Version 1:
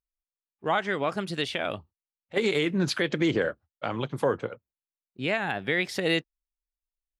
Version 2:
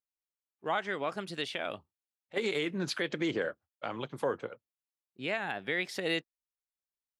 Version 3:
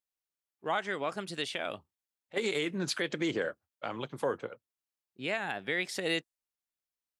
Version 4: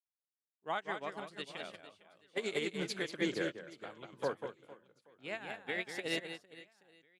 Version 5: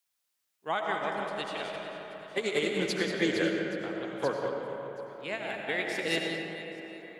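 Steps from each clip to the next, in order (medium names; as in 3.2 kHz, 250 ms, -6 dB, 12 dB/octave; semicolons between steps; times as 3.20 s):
high-pass 230 Hz 6 dB/octave; trim -5.5 dB
dynamic bell 8.3 kHz, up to +7 dB, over -58 dBFS, Q 1.1
on a send: reverse bouncing-ball echo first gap 190 ms, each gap 1.4×, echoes 5; on the sum: upward expansion 2.5:1, over -40 dBFS; trim -1.5 dB
reverberation RT60 3.3 s, pre-delay 50 ms, DRR 1.5 dB; tape noise reduction on one side only encoder only; trim +5.5 dB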